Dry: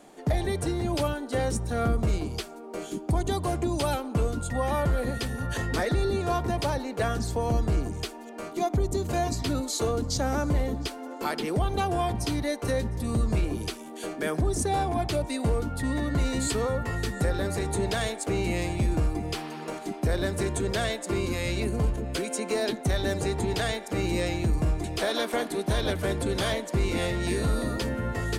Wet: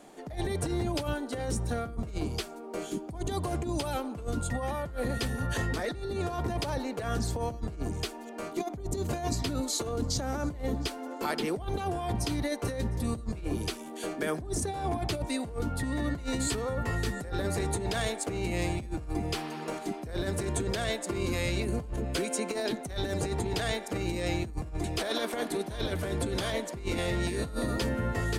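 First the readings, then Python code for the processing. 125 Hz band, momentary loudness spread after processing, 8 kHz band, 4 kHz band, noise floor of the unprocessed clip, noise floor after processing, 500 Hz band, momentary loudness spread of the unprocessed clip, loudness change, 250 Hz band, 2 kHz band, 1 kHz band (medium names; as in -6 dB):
-5.0 dB, 5 LU, -2.0 dB, -2.5 dB, -41 dBFS, -42 dBFS, -4.5 dB, 5 LU, -4.0 dB, -3.5 dB, -3.0 dB, -5.0 dB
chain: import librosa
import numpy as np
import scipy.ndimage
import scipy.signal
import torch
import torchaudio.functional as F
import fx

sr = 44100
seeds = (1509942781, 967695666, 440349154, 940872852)

y = fx.over_compress(x, sr, threshold_db=-28.0, ratio=-0.5)
y = y * 10.0 ** (-2.5 / 20.0)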